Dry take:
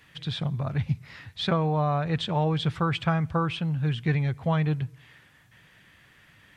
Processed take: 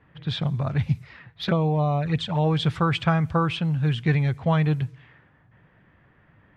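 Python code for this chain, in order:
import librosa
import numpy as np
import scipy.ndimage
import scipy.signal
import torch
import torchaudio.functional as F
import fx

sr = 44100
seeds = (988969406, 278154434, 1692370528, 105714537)

y = fx.env_lowpass(x, sr, base_hz=990.0, full_db=-23.5)
y = fx.env_flanger(y, sr, rest_ms=9.8, full_db=-21.0, at=(1.03, 2.43), fade=0.02)
y = y * 10.0 ** (3.5 / 20.0)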